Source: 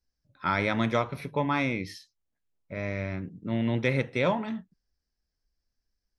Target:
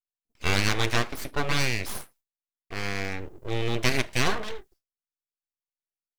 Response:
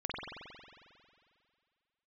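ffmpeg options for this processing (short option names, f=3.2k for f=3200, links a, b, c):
-af "crystalizer=i=5:c=0,agate=range=-33dB:threshold=-52dB:ratio=3:detection=peak,aeval=exprs='abs(val(0))':c=same,volume=1.5dB"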